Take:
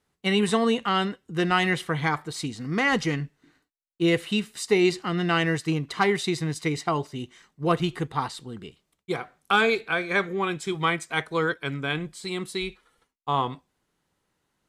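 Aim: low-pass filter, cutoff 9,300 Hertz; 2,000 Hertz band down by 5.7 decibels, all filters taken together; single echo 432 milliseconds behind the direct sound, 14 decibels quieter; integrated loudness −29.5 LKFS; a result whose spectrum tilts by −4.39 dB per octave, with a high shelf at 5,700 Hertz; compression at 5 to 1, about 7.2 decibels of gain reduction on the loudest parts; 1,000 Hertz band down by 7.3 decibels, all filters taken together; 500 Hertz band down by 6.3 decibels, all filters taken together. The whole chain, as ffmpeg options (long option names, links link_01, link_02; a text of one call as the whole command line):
ffmpeg -i in.wav -af "lowpass=9300,equalizer=frequency=500:width_type=o:gain=-7.5,equalizer=frequency=1000:width_type=o:gain=-6,equalizer=frequency=2000:width_type=o:gain=-5.5,highshelf=frequency=5700:gain=5.5,acompressor=threshold=-29dB:ratio=5,aecho=1:1:432:0.2,volume=4.5dB" out.wav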